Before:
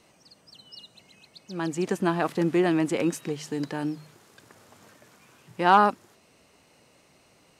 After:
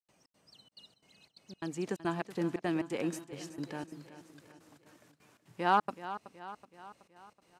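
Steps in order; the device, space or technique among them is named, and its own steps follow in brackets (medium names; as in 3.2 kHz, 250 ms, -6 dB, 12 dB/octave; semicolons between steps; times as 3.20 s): trance gate with a delay (trance gate ".xx.xxxx.xx.xxx" 176 bpm -60 dB; feedback delay 375 ms, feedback 54%, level -13.5 dB); trim -8.5 dB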